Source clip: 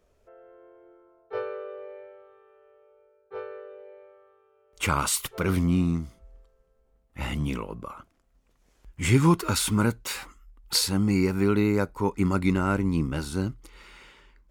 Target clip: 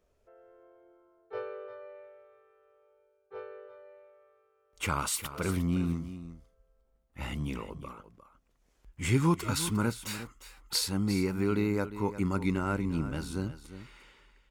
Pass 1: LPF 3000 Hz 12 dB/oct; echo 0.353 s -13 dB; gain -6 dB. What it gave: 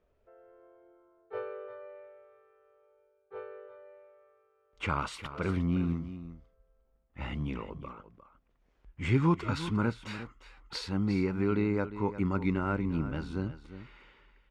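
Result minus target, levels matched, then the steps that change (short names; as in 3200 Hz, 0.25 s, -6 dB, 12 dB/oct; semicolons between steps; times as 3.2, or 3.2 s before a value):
4000 Hz band -6.0 dB
remove: LPF 3000 Hz 12 dB/oct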